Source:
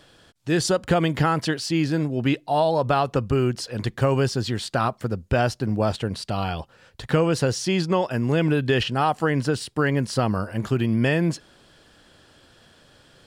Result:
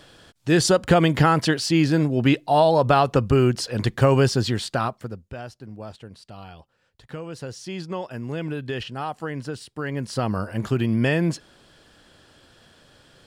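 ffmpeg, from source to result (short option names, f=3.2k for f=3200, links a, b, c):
-af "volume=18.5dB,afade=t=out:st=4.4:d=0.59:silence=0.375837,afade=t=out:st=4.99:d=0.34:silence=0.316228,afade=t=in:st=7.22:d=0.77:silence=0.473151,afade=t=in:st=9.81:d=0.67:silence=0.375837"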